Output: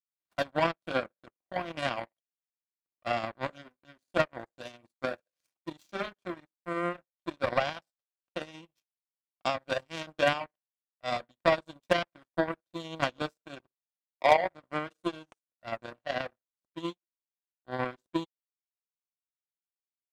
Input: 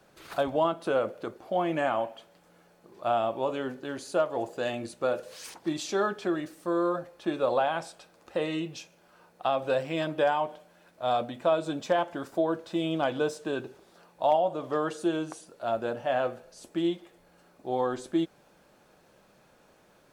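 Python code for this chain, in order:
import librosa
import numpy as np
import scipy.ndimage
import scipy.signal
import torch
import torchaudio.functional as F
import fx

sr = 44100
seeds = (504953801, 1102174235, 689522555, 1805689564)

y = fx.power_curve(x, sr, exponent=3.0)
y = fx.notch_comb(y, sr, f0_hz=430.0)
y = y * librosa.db_to_amplitude(7.5)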